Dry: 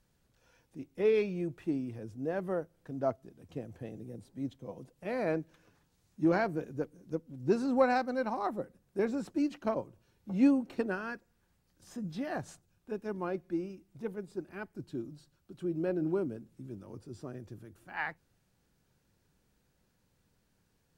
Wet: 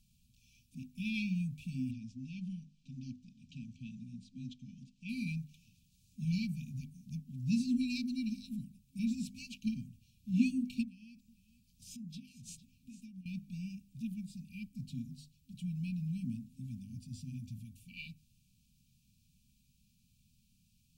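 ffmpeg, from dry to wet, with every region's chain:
-filter_complex "[0:a]asettb=1/sr,asplit=3[a][b][c];[a]atrim=end=1.914[d];[b]atrim=start=1.91:end=5.09,asetpts=PTS-STARTPTS,afade=t=in:d=0.004:c=qsin,afade=t=out:st=3.176:d=0.004:c=qsin,lowpass=f=6.5k:w=0.5412,lowpass=f=6.5k:w=1.3066,equalizer=f=77:t=o:w=1.5:g=-12.5[e];[c]atrim=start=5.086[f];[d][e]acrossfade=d=0.004:c1=hsin:c2=qsin[g];[g][f]acrossfade=d=0.004:c1=qsin:c2=hsin,asettb=1/sr,asplit=3[h][i][j];[h]atrim=end=10.834[k];[i]atrim=start=10.83:end=13.26,asetpts=PTS-STARTPTS,afade=t=in:d=0.004:c=qsin,afade=t=out:st=2.426:d=0.004:c=qsin,acompressor=threshold=-46dB:ratio=12:attack=3.2:release=140:knee=1:detection=peak,aecho=1:1:453:0.178,atrim=end_sample=107163[l];[j]atrim=start=13.256[m];[k][l]acrossfade=d=0.004:c1=hsin:c2=qsin[n];[n][m]acrossfade=d=0.004:c1=qsin:c2=hsin,bandreject=f=50:t=h:w=6,bandreject=f=100:t=h:w=6,bandreject=f=150:t=h:w=6,bandreject=f=200:t=h:w=6,bandreject=f=250:t=h:w=6,afftfilt=real='re*(1-between(b*sr/4096,260,2300))':imag='im*(1-between(b*sr/4096,260,2300))':win_size=4096:overlap=0.75,equalizer=f=1k:t=o:w=1.6:g=-5,volume=4.5dB"

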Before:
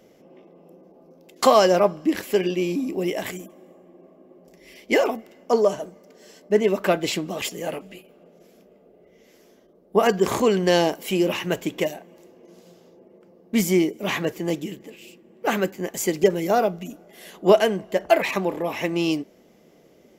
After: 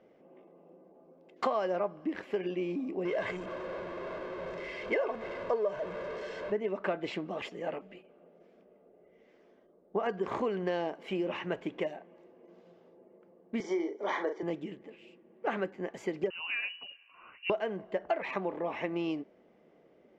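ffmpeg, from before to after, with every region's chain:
-filter_complex "[0:a]asettb=1/sr,asplit=3[a][b][c];[a]atrim=end=3.054[d];[b]atrim=start=3.05:end=6.52,asetpts=PTS-STARTPTS,afade=t=in:d=0.004:c=qsin,afade=t=out:st=3.466:d=0.004:c=qsin,aeval=exprs='val(0)+0.5*0.0398*sgn(val(0))':c=same,lowpass=7.9k,aecho=1:1:1.9:0.58,atrim=end_sample=153027[e];[c]atrim=start=6.516[f];[d][e]acrossfade=d=0.004:c1=hsin:c2=qsin[g];[g][f]acrossfade=d=0.004:c1=qsin:c2=hsin,asettb=1/sr,asplit=3[h][i][j];[h]atrim=end=13.604[k];[i]atrim=start=13.6:end=14.43,asetpts=PTS-STARTPTS,afade=t=in:d=0.004:c=qsin,afade=t=out:st=0.826:d=0.004:c=qsin,asuperstop=centerf=2700:order=4:qfactor=2.7,highpass=f=290:w=0.5412,highpass=f=290:w=1.3066,equalizer=f=430:t=q:w=4:g=5,equalizer=f=920:t=q:w=4:g=7,equalizer=f=2.9k:t=q:w=4:g=7,equalizer=f=5.8k:t=q:w=4:g=10,lowpass=f=7.3k:w=0.5412,lowpass=f=7.3k:w=1.3066,asplit=2[l][m];[m]adelay=40,volume=-7dB[n];[l][n]amix=inputs=2:normalize=0,atrim=end_sample=36603[o];[j]atrim=start=14.426[p];[k][o]acrossfade=d=0.004:c1=hsin:c2=qsin[q];[q][p]acrossfade=d=0.004:c1=qsin:c2=hsin,asettb=1/sr,asplit=3[r][s][t];[r]atrim=end=16.304[u];[s]atrim=start=16.3:end=17.5,asetpts=PTS-STARTPTS,afade=t=in:d=0.004:c=qsin,afade=t=out:st=1.196:d=0.004:c=qsin,bandreject=f=560:w=5.9,acompressor=threshold=-21dB:ratio=3:attack=3.2:release=140:knee=1:detection=peak,lowpass=f=2.6k:t=q:w=0.5098,lowpass=f=2.6k:t=q:w=0.6013,lowpass=f=2.6k:t=q:w=0.9,lowpass=f=2.6k:t=q:w=2.563,afreqshift=-3100[v];[t]atrim=start=17.496[w];[u][v]acrossfade=d=0.004:c1=hsin:c2=qsin[x];[x][w]acrossfade=d=0.004:c1=qsin:c2=hsin,lowpass=2k,acompressor=threshold=-21dB:ratio=6,lowshelf=f=240:g=-8.5,volume=-5dB"

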